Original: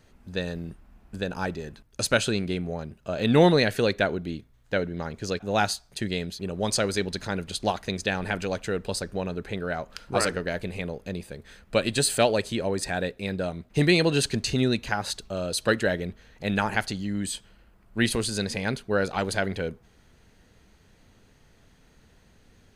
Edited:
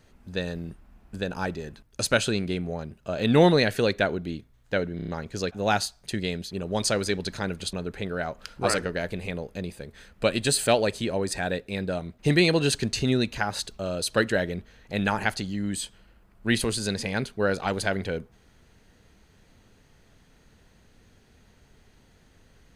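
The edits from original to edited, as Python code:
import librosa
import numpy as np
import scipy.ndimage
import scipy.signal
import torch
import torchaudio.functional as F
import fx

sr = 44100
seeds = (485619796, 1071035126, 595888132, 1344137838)

y = fx.edit(x, sr, fx.stutter(start_s=4.96, slice_s=0.03, count=5),
    fx.cut(start_s=7.61, length_s=1.63), tone=tone)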